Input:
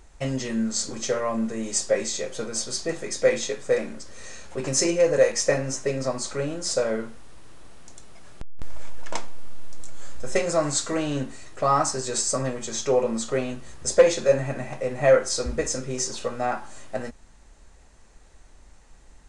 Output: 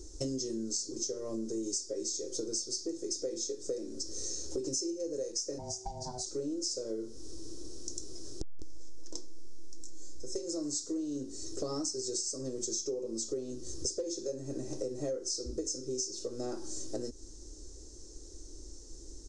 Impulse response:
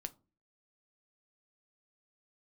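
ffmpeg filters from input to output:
-filter_complex "[0:a]firequalizer=gain_entry='entry(110,0);entry(180,-13);entry(320,13);entry(700,-15);entry(1300,-17);entry(2300,-23);entry(3400,-8);entry(5400,13);entry(10000,-3)':delay=0.05:min_phase=1,acompressor=threshold=0.0178:ratio=16,asplit=3[s0][s1][s2];[s0]afade=t=out:st=5.58:d=0.02[s3];[s1]aeval=exprs='val(0)*sin(2*PI*380*n/s)':c=same,afade=t=in:st=5.58:d=0.02,afade=t=out:st=6.25:d=0.02[s4];[s2]afade=t=in:st=6.25:d=0.02[s5];[s3][s4][s5]amix=inputs=3:normalize=0,volume=1.33"

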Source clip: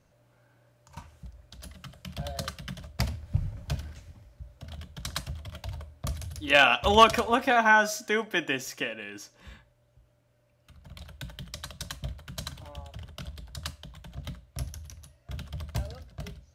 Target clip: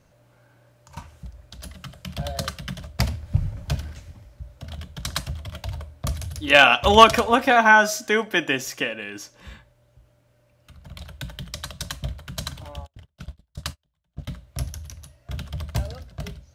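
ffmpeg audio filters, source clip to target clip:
-filter_complex "[0:a]asplit=3[s0][s1][s2];[s0]afade=t=out:st=12.85:d=0.02[s3];[s1]agate=range=0.0158:threshold=0.0126:ratio=16:detection=peak,afade=t=in:st=12.85:d=0.02,afade=t=out:st=14.29:d=0.02[s4];[s2]afade=t=in:st=14.29:d=0.02[s5];[s3][s4][s5]amix=inputs=3:normalize=0,volume=2"

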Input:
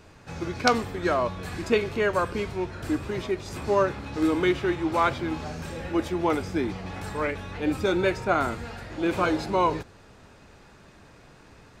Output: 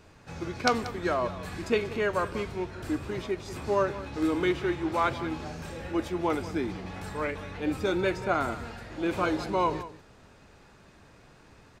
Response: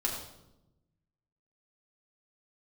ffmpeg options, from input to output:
-af "aecho=1:1:185:0.178,volume=0.668"

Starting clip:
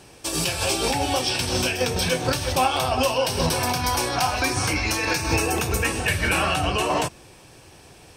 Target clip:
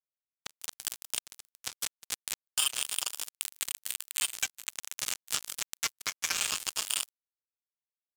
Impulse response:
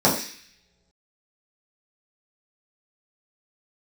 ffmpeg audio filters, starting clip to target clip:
-filter_complex "[0:a]afftfilt=real='re*gte(hypot(re,im),0.0224)':imag='im*gte(hypot(re,im),0.0224)':win_size=1024:overlap=0.75,highpass=990,equalizer=f=2400:w=1.6:g=-4.5,aecho=1:1:6.4:0.87,asplit=7[s0][s1][s2][s3][s4][s5][s6];[s1]adelay=150,afreqshift=-90,volume=0.422[s7];[s2]adelay=300,afreqshift=-180,volume=0.216[s8];[s3]adelay=450,afreqshift=-270,volume=0.11[s9];[s4]adelay=600,afreqshift=-360,volume=0.0562[s10];[s5]adelay=750,afreqshift=-450,volume=0.0285[s11];[s6]adelay=900,afreqshift=-540,volume=0.0146[s12];[s0][s7][s8][s9][s10][s11][s12]amix=inputs=7:normalize=0,lowpass=f=3300:t=q:w=0.5098,lowpass=f=3300:t=q:w=0.6013,lowpass=f=3300:t=q:w=0.9,lowpass=f=3300:t=q:w=2.563,afreqshift=-3900,afftdn=nr=20:nf=-37,acrusher=bits=2:mix=0:aa=0.5,acompressor=threshold=0.00794:ratio=4,alimiter=level_in=1.12:limit=0.0631:level=0:latency=1:release=152,volume=0.891,crystalizer=i=4:c=0,volume=2"

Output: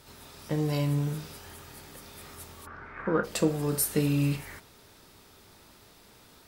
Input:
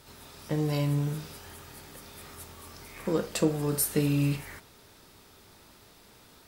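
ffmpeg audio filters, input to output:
-filter_complex "[0:a]asplit=3[s0][s1][s2];[s0]afade=t=out:st=2.65:d=0.02[s3];[s1]lowpass=f=1500:t=q:w=4.9,afade=t=in:st=2.65:d=0.02,afade=t=out:st=3.23:d=0.02[s4];[s2]afade=t=in:st=3.23:d=0.02[s5];[s3][s4][s5]amix=inputs=3:normalize=0"

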